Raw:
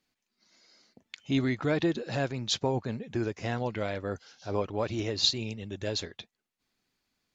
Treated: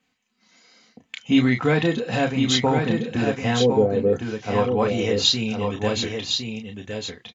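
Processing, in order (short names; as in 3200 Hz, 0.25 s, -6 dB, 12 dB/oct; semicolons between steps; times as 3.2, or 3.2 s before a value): 3.6–4.13 synth low-pass 420 Hz, resonance Q 4.9; echo 1.059 s -5.5 dB; reverb, pre-delay 3 ms, DRR 3 dB; gain +1 dB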